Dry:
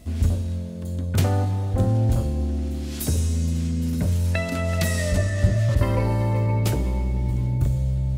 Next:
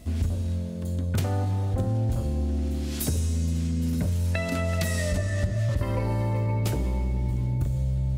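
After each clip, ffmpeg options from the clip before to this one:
-af "acompressor=threshold=-22dB:ratio=6"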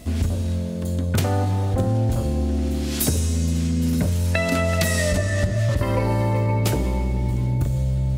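-af "lowshelf=f=140:g=-6,volume=8dB"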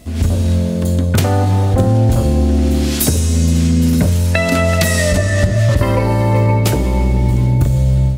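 -af "dynaudnorm=f=130:g=3:m=10.5dB"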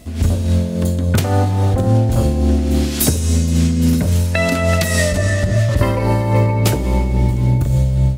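-af "tremolo=f=3.6:d=0.42"

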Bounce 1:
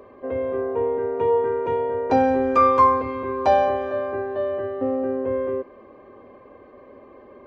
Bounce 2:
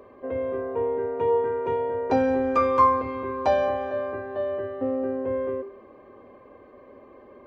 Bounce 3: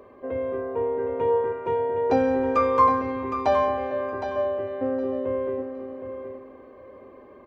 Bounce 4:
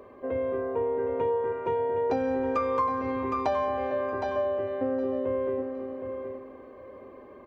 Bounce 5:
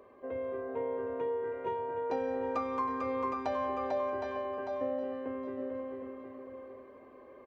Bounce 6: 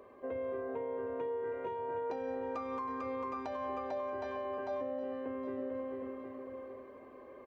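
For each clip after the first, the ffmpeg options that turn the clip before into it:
-af "bandreject=f=394.4:t=h:w=4,bandreject=f=788.8:t=h:w=4,bandreject=f=1.1832k:t=h:w=4,volume=-2.5dB"
-af "aecho=1:1:764|1528|2292:0.376|0.0752|0.015"
-af "acompressor=threshold=-24dB:ratio=5"
-af "lowshelf=f=240:g=-6,aecho=1:1:447:0.631,volume=-6.5dB"
-af "alimiter=level_in=7dB:limit=-24dB:level=0:latency=1:release=348,volume=-7dB,volume=1dB"

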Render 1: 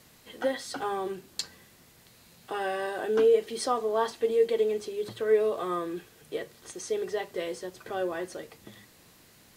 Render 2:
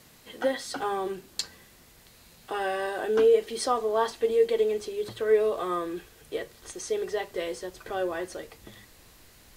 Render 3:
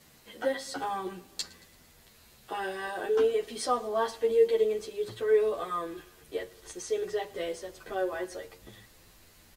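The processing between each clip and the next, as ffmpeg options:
-af "asubboost=boost=6.5:cutoff=57,volume=2dB"
-filter_complex "[0:a]aecho=1:1:113|226|339|452:0.0794|0.0405|0.0207|0.0105,asplit=2[a][b];[b]adelay=10.1,afreqshift=-0.52[c];[a][c]amix=inputs=2:normalize=1"

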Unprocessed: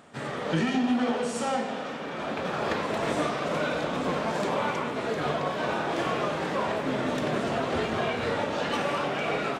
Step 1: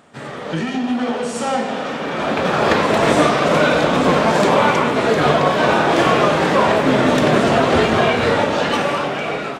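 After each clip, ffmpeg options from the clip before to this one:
-af "dynaudnorm=f=700:g=5:m=11.5dB,volume=3dB"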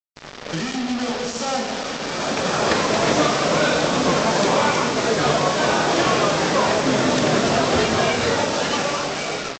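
-af "aresample=16000,acrusher=bits=3:mix=0:aa=0.5,aresample=44100,equalizer=f=5.3k:t=o:w=0.98:g=7.5,volume=-4.5dB"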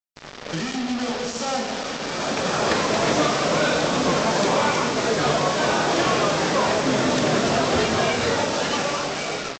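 -af "asoftclip=type=tanh:threshold=-6.5dB,volume=-1.5dB"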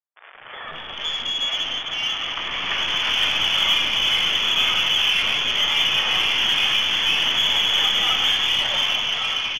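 -filter_complex "[0:a]lowpass=f=3.1k:t=q:w=0.5098,lowpass=f=3.1k:t=q:w=0.6013,lowpass=f=3.1k:t=q:w=0.9,lowpass=f=3.1k:t=q:w=2.563,afreqshift=-3600,aeval=exprs='0.398*(cos(1*acos(clip(val(0)/0.398,-1,1)))-cos(1*PI/2))+0.0126*(cos(4*acos(clip(val(0)/0.398,-1,1)))-cos(4*PI/2))+0.00794*(cos(8*acos(clip(val(0)/0.398,-1,1)))-cos(8*PI/2))':c=same,acrossover=split=420|2100[a][b][c];[a]adelay=180[d];[c]adelay=510[e];[d][b][e]amix=inputs=3:normalize=0,volume=2.5dB"

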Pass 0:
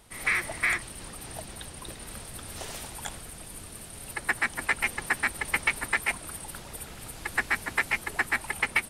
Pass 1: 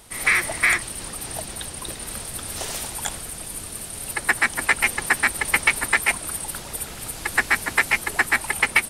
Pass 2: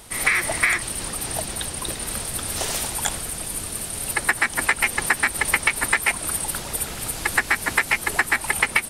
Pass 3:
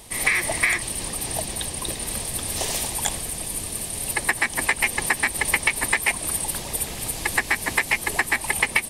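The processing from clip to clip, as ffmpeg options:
-af "bass=f=250:g=-2,treble=f=4k:g=4,volume=7dB"
-af "acompressor=threshold=-19dB:ratio=10,volume=4dB"
-af "equalizer=f=1.4k:w=5:g=-12"

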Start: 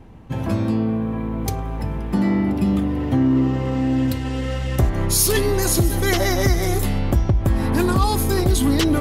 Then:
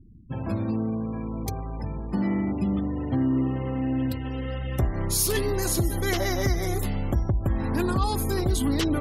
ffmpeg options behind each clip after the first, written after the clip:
-af "afftfilt=real='re*gte(hypot(re,im),0.02)':imag='im*gte(hypot(re,im),0.02)':win_size=1024:overlap=0.75,volume=-6.5dB"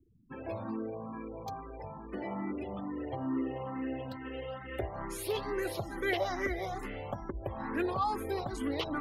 -filter_complex "[0:a]acrossover=split=340 3300:gain=0.178 1 0.126[a][b][c];[a][b][c]amix=inputs=3:normalize=0,asplit=2[d][e];[e]afreqshift=2.3[f];[d][f]amix=inputs=2:normalize=1"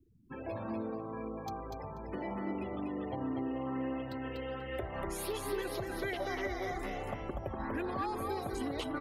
-filter_complex "[0:a]acompressor=threshold=-34dB:ratio=6,asplit=2[a][b];[b]aecho=0:1:243|486|729:0.631|0.101|0.0162[c];[a][c]amix=inputs=2:normalize=0"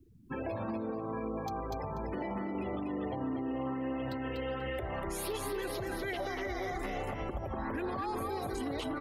-af "alimiter=level_in=10.5dB:limit=-24dB:level=0:latency=1:release=91,volume=-10.5dB,volume=6.5dB"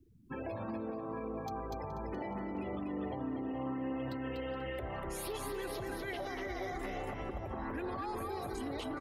-filter_complex "[0:a]asplit=2[a][b];[b]adelay=422,lowpass=f=3.5k:p=1,volume=-11.5dB,asplit=2[c][d];[d]adelay=422,lowpass=f=3.5k:p=1,volume=0.46,asplit=2[e][f];[f]adelay=422,lowpass=f=3.5k:p=1,volume=0.46,asplit=2[g][h];[h]adelay=422,lowpass=f=3.5k:p=1,volume=0.46,asplit=2[i][j];[j]adelay=422,lowpass=f=3.5k:p=1,volume=0.46[k];[a][c][e][g][i][k]amix=inputs=6:normalize=0,volume=-3.5dB"

